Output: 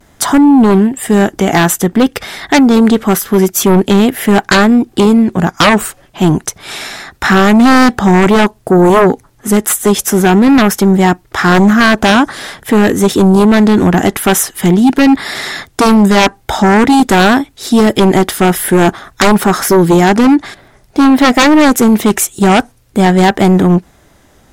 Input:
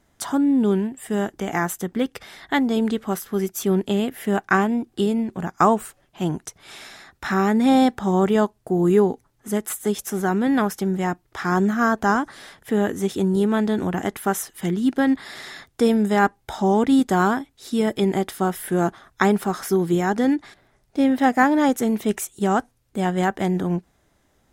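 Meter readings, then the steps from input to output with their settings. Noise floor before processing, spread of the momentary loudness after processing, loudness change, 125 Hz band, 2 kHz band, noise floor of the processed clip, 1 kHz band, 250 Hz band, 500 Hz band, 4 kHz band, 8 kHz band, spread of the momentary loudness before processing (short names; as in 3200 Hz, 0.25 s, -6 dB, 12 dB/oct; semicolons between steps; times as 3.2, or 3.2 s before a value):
-64 dBFS, 7 LU, +12.5 dB, +13.5 dB, +13.5 dB, -48 dBFS, +11.0 dB, +12.5 dB, +11.0 dB, +17.5 dB, +16.5 dB, 10 LU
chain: vibrato 0.48 Hz 27 cents; sine folder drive 13 dB, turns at -3 dBFS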